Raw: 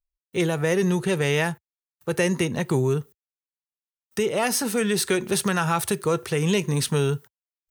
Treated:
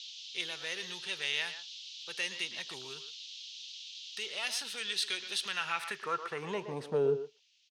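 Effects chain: speakerphone echo 0.12 s, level -10 dB; band noise 2700–6500 Hz -43 dBFS; band-pass sweep 3500 Hz -> 460 Hz, 5.43–7.14

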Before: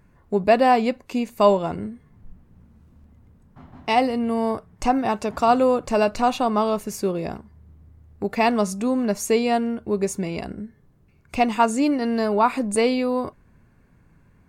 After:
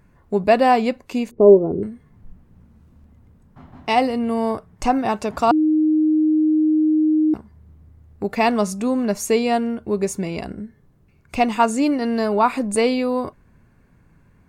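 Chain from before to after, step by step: 1.31–1.83 synth low-pass 400 Hz, resonance Q 4.3; 5.51–7.34 bleep 310 Hz -15 dBFS; gain +1.5 dB

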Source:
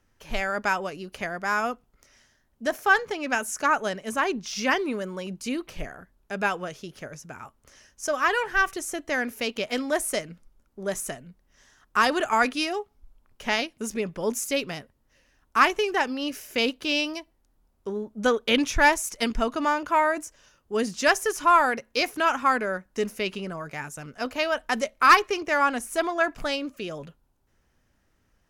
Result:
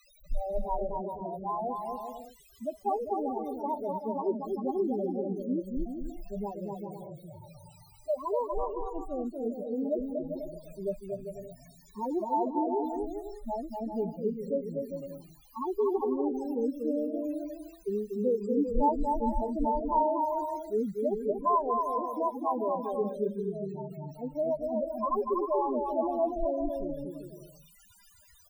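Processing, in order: elliptic low-pass 990 Hz, stop band 50 dB; harmonic-percussive split percussive -12 dB; resonant low shelf 120 Hz +6.5 dB, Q 1.5; in parallel at 0 dB: limiter -23.5 dBFS, peak gain reduction 11 dB; on the sum: requantised 6-bit, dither triangular; resonator 200 Hz, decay 0.31 s, harmonics all, mix 40%; loudest bins only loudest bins 4; on a send: bouncing-ball echo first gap 0.24 s, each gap 0.65×, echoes 5; on the sum: gain -2 dB

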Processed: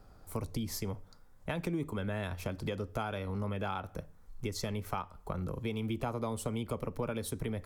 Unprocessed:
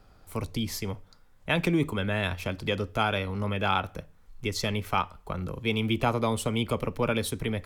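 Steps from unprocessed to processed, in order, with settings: compressor 4:1, threshold -32 dBFS, peak gain reduction 10.5 dB; bell 2800 Hz -8 dB 1.4 oct

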